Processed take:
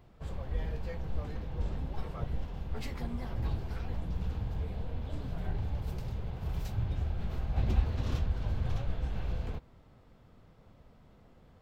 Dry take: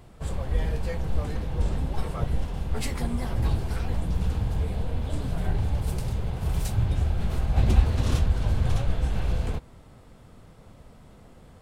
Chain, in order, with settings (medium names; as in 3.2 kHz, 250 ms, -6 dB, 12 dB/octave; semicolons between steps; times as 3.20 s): peaking EQ 9.3 kHz -14.5 dB 0.75 oct; trim -8.5 dB